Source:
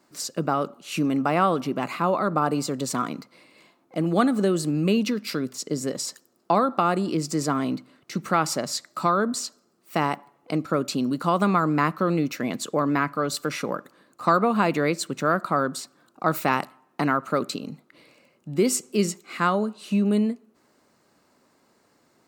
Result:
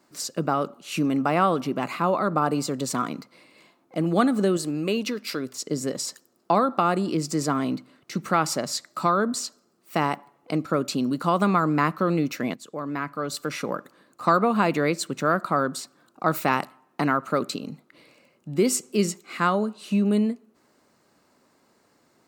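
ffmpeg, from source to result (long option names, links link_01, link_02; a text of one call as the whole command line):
ffmpeg -i in.wav -filter_complex "[0:a]asettb=1/sr,asplit=3[link_01][link_02][link_03];[link_01]atrim=end=4.574[link_04];[link_02]atrim=start=4.57:end=5.67,asetpts=PTS-STARTPTS,afade=type=in:duration=0.004:curve=qsin,afade=type=out:start_time=1.096:duration=0.004:curve=qsin,equalizer=frequency=180:width=1.5:gain=-9[link_05];[link_03]atrim=start=5.666[link_06];[link_04][link_05]acrossfade=duration=0.004:curve1=hsin:curve2=qsin[link_07];[link_07][link_06]acrossfade=duration=0.004:curve1=qsin:curve2=hsin,asplit=2[link_08][link_09];[link_08]atrim=end=12.54,asetpts=PTS-STARTPTS,afade=type=out:start_time=12.536:duration=0.004:curve=hsin:silence=0.188365[link_10];[link_09]atrim=start=12.54,asetpts=PTS-STARTPTS,afade=type=in:duration=1.24:silence=0.188365[link_11];[link_10][link_11]concat=n=2:v=0:a=1" out.wav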